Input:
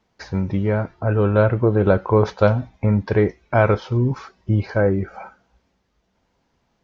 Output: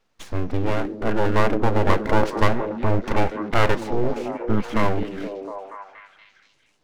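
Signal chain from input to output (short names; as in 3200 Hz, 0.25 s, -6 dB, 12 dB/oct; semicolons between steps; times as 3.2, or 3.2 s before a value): full-wave rectifier; delay with a stepping band-pass 0.237 s, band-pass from 260 Hz, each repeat 0.7 oct, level -2 dB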